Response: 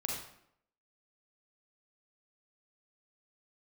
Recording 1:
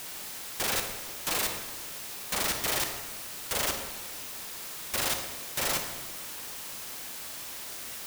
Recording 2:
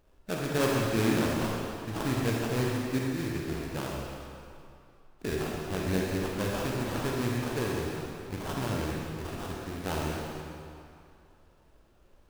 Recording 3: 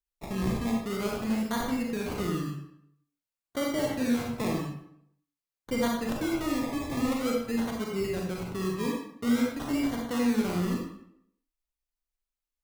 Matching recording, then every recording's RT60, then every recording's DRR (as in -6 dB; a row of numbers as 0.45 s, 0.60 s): 3; 1.2 s, 2.5 s, 0.70 s; 4.5 dB, -3.0 dB, -1.5 dB